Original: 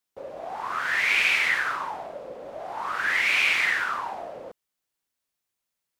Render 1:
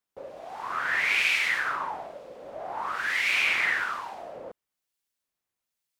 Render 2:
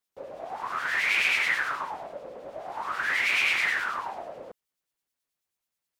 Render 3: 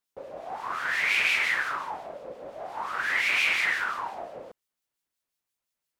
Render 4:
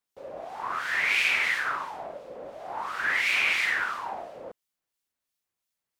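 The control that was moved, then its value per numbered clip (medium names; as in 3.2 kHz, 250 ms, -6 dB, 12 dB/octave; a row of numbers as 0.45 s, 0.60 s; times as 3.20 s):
harmonic tremolo, rate: 1.1 Hz, 9.3 Hz, 5.7 Hz, 2.9 Hz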